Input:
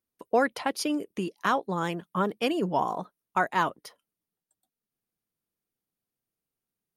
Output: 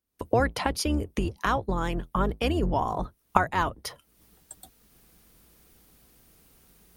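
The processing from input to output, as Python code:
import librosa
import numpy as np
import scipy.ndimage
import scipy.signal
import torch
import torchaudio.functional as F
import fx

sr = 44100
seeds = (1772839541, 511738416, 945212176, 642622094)

y = fx.octave_divider(x, sr, octaves=2, level_db=3.0)
y = fx.recorder_agc(y, sr, target_db=-18.0, rise_db_per_s=53.0, max_gain_db=30)
y = y * 10.0 ** (-1.0 / 20.0)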